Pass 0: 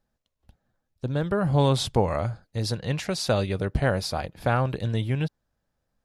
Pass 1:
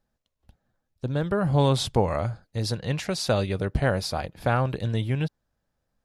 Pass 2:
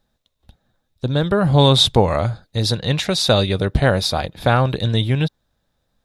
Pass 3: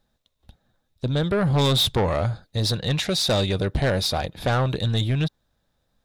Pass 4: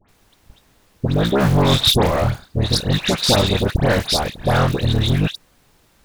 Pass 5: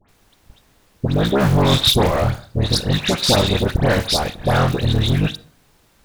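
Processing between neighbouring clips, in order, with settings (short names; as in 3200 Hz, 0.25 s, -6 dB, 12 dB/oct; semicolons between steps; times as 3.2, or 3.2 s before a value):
nothing audible
bell 3700 Hz +12.5 dB 0.23 oct; gain +7.5 dB
soft clip -14.5 dBFS, distortion -10 dB; gain -1.5 dB
cycle switcher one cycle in 3, muted; added noise pink -64 dBFS; dispersion highs, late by 89 ms, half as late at 1800 Hz; gain +7 dB
reverb RT60 0.55 s, pre-delay 38 ms, DRR 17 dB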